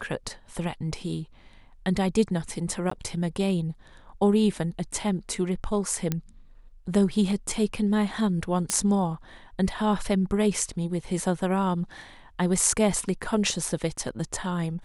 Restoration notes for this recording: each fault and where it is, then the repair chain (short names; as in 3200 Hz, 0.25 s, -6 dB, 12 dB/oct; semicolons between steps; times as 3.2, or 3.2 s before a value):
2.9–2.91 gap 14 ms
6.12 pop -12 dBFS
8.7 pop -10 dBFS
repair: de-click; interpolate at 2.9, 14 ms